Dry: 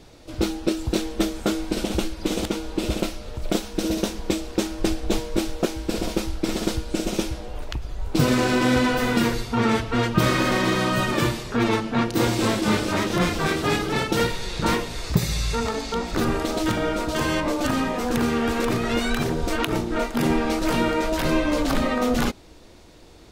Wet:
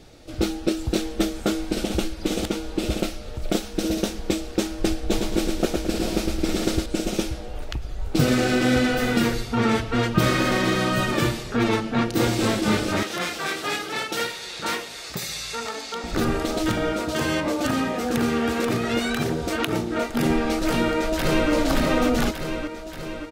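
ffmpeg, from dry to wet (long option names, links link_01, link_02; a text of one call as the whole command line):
ffmpeg -i in.wav -filter_complex "[0:a]asettb=1/sr,asplit=3[link_01][link_02][link_03];[link_01]atrim=end=5.084[link_04];[link_02]atrim=start=5.08:end=6.86,asetpts=PTS-STARTPTS,afade=type=in:duration=0.004:curve=qsin,afade=type=out:start_time=1.776:duration=0.004:curve=qsin,aecho=1:1:109|218|327|436|545:0.631|0.259|0.106|0.0435|0.0178,atrim=end_sample=78498[link_05];[link_03]atrim=start=6.856[link_06];[link_04][link_05]acrossfade=duration=0.004:curve1=hsin:curve2=qsin[link_07];[link_07][link_06]acrossfade=duration=0.004:curve1=qsin:curve2=hsin,asettb=1/sr,asplit=3[link_08][link_09][link_10];[link_08]atrim=end=13.034[link_11];[link_09]atrim=start=13.03:end=16.04,asetpts=PTS-STARTPTS,afade=type=in:duration=0.004:curve=qsin,afade=type=out:start_time=3.006:duration=0.004:curve=qsin,highpass=frequency=870:poles=1[link_12];[link_10]atrim=start=16.036[link_13];[link_11][link_12]acrossfade=duration=0.004:curve1=hsin:curve2=qsin[link_14];[link_14][link_13]acrossfade=duration=0.004:curve1=qsin:curve2=hsin,asettb=1/sr,asplit=3[link_15][link_16][link_17];[link_15]atrim=end=16.924[link_18];[link_16]atrim=start=16.92:end=20.1,asetpts=PTS-STARTPTS,afade=type=in:duration=0.004:curve=qsin,afade=type=out:start_time=3.176:duration=0.004:curve=qsin,highpass=75[link_19];[link_17]atrim=start=20.096[link_20];[link_18][link_19]acrossfade=duration=0.004:curve1=hsin:curve2=qsin[link_21];[link_21][link_20]acrossfade=duration=0.004:curve1=qsin:curve2=hsin,asplit=2[link_22][link_23];[link_23]afade=type=in:start_time=20.67:duration=0.01,afade=type=out:start_time=21.51:duration=0.01,aecho=0:1:580|1160|1740|2320|2900|3480|4060|4640|5220:0.707946|0.424767|0.25486|0.152916|0.0917498|0.0550499|0.0330299|0.019818|0.0118908[link_24];[link_22][link_24]amix=inputs=2:normalize=0,bandreject=frequency=1000:width=7.5" out.wav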